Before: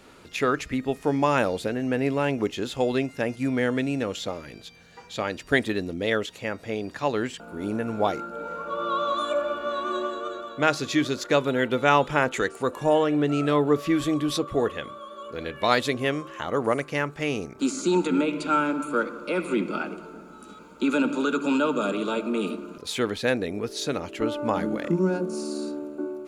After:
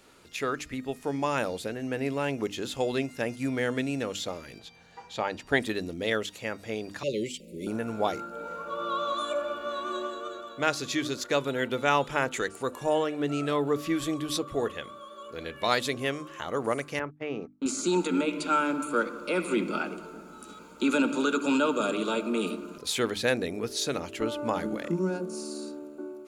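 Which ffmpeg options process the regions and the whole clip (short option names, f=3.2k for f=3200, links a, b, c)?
-filter_complex "[0:a]asettb=1/sr,asplit=3[a][b][c];[a]atrim=end=4.594[d];[b]atrim=start=4.59:end=5.6,asetpts=PTS-STARTPTS,afade=t=in:d=0.004:c=qsin,afade=t=out:st=1.006:d=0.004:c=qsin,lowpass=f=3.7k:p=1,equalizer=f=850:w=3.4:g=9[e];[c]atrim=start=5.596[f];[d][e]acrossfade=d=0.004:c1=hsin:c2=qsin[g];[g][f]acrossfade=d=0.004:c1=qsin:c2=hsin,asettb=1/sr,asplit=3[h][i][j];[h]atrim=end=7.034[k];[i]atrim=start=7.03:end=7.67,asetpts=PTS-STARTPTS,afade=t=in:d=0.004:c=qsin,afade=t=out:st=0.636:d=0.004:c=qsin,asuperstop=centerf=1100:order=20:qfactor=0.75,aecho=1:1:5.4:0.41,atrim=end_sample=28224[l];[j]atrim=start=7.666[m];[k][l]acrossfade=d=0.004:c1=hsin:c2=qsin[n];[n][m]acrossfade=d=0.004:c1=qsin:c2=hsin,asettb=1/sr,asplit=3[o][p][q];[o]atrim=end=16.994[r];[p]atrim=start=16.99:end=17.66,asetpts=PTS-STARTPTS,afade=t=in:d=0.004:c=qsin,afade=t=out:st=0.666:d=0.004:c=qsin,highpass=150,lowpass=3k,highshelf=f=2.3k:g=-11.5,agate=range=-34dB:threshold=-36dB:ratio=16:release=100:detection=peak[s];[q]atrim=start=17.656[t];[r][s]acrossfade=d=0.004:c1=hsin:c2=qsin[u];[u][t]acrossfade=d=0.004:c1=qsin:c2=hsin,highshelf=f=4.2k:g=7,bandreject=f=50:t=h:w=6,bandreject=f=100:t=h:w=6,bandreject=f=150:t=h:w=6,bandreject=f=200:t=h:w=6,bandreject=f=250:t=h:w=6,bandreject=f=300:t=h:w=6,dynaudnorm=f=430:g=11:m=6dB,volume=-7dB"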